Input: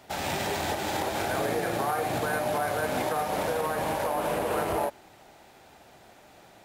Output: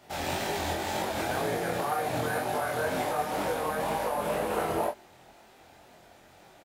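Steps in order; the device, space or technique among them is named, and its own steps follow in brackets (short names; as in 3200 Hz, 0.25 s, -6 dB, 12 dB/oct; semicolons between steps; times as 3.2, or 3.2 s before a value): double-tracked vocal (doubler 24 ms -4 dB; chorus 2 Hz, delay 18.5 ms, depth 6.1 ms)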